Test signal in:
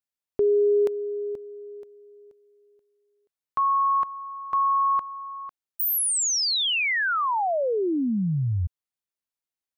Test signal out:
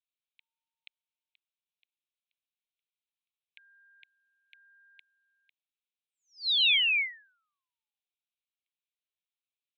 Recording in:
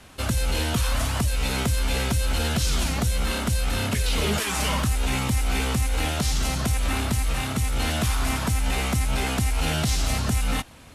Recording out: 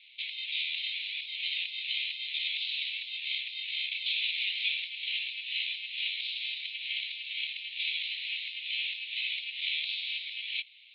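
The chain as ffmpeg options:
-af "aeval=exprs='val(0)*sin(2*PI*500*n/s)':c=same,asuperpass=centerf=3000:order=12:qfactor=1.6,volume=1.68"

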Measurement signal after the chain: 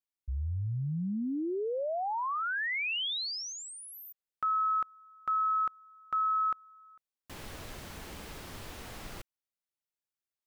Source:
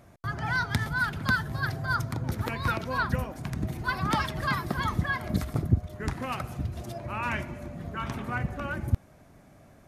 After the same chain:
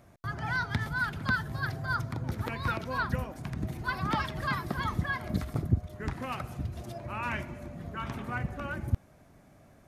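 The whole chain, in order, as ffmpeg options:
-filter_complex "[0:a]acrossover=split=4700[s0][s1];[s1]acompressor=threshold=0.00447:ratio=4:attack=1:release=60[s2];[s0][s2]amix=inputs=2:normalize=0,volume=0.708"

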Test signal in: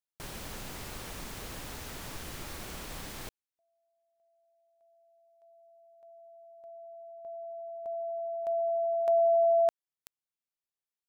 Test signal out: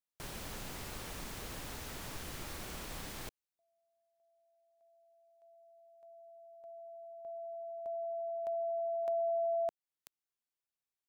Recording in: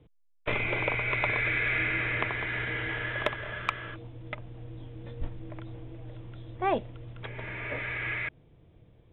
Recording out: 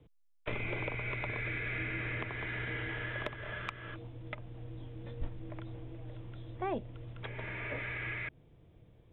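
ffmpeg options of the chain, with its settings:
-filter_complex "[0:a]acrossover=split=420[s0][s1];[s1]acompressor=threshold=0.0178:ratio=3:attack=17:release=539:knee=2.83:detection=peak[s2];[s0][s2]amix=inputs=2:normalize=0,asplit=2[s3][s4];[s4]alimiter=level_in=1.06:limit=0.0631:level=0:latency=1:release=242,volume=0.944,volume=0.891[s5];[s3][s5]amix=inputs=2:normalize=0,volume=0.398"

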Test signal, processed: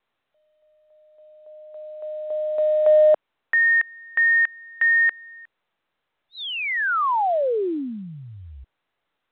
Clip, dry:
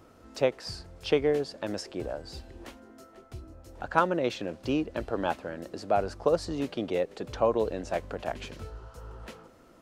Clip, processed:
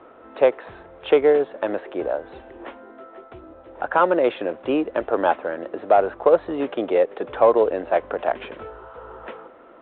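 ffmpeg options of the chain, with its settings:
-filter_complex "[0:a]acrossover=split=320 2000:gain=0.1 1 0.224[s0][s1][s2];[s0][s1][s2]amix=inputs=3:normalize=0,asplit=2[s3][s4];[s4]asoftclip=type=tanh:threshold=0.0794,volume=0.447[s5];[s3][s5]amix=inputs=2:normalize=0,alimiter=level_in=4.73:limit=0.891:release=50:level=0:latency=1,volume=0.596" -ar 8000 -c:a pcm_mulaw

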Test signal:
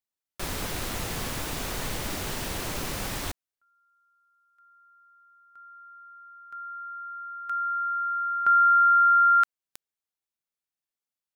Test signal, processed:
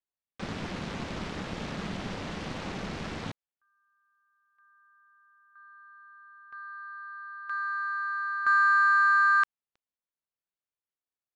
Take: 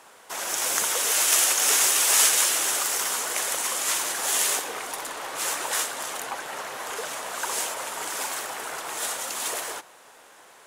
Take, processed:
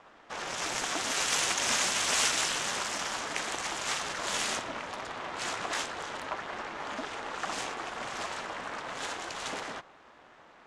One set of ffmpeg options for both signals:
-af "aeval=exprs='val(0)*sin(2*PI*190*n/s)':c=same,adynamicsmooth=sensitivity=5:basefreq=3700,lowpass=6600"

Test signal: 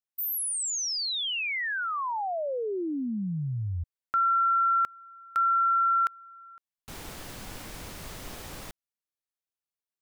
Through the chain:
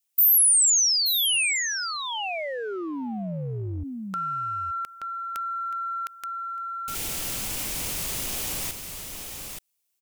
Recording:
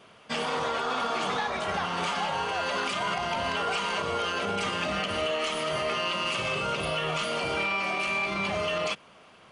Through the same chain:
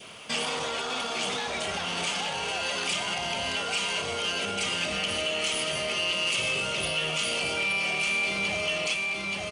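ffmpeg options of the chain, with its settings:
-af "aecho=1:1:877:0.376,acompressor=threshold=0.0158:ratio=3:attack=0.41:release=52:knee=6:detection=peak,adynamicequalizer=threshold=0.00282:dfrequency=1100:dqfactor=2.8:tfrequency=1100:tqfactor=2.8:attack=5:release=100:ratio=0.375:range=3:mode=cutabove:tftype=bell,aexciter=amount=2.4:drive=5.1:freq=2300,volume=2"

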